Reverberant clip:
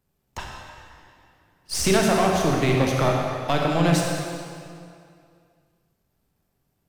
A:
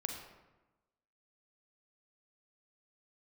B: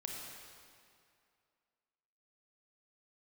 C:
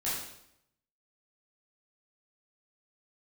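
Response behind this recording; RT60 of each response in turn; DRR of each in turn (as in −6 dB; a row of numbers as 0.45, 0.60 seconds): B; 1.1, 2.4, 0.75 seconds; 3.0, −1.0, −9.5 decibels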